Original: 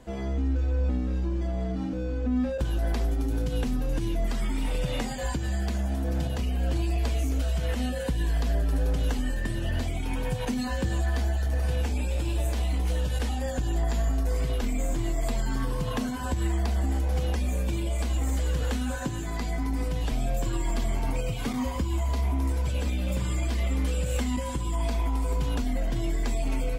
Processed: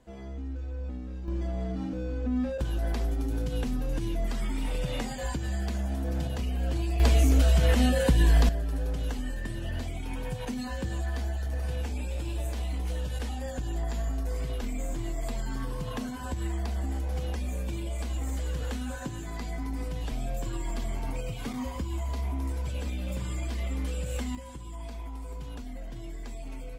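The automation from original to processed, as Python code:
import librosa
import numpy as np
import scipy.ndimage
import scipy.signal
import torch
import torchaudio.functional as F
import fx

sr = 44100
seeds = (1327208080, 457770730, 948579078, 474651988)

y = fx.gain(x, sr, db=fx.steps((0.0, -10.0), (1.28, -2.5), (7.0, 6.0), (8.49, -5.0), (24.35, -12.0)))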